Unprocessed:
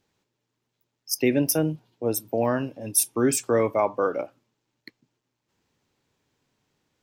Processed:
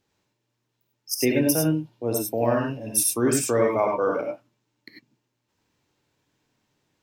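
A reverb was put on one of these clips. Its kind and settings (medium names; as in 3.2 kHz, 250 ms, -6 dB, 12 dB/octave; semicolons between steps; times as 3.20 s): gated-style reverb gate 120 ms rising, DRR 0 dB; trim -1.5 dB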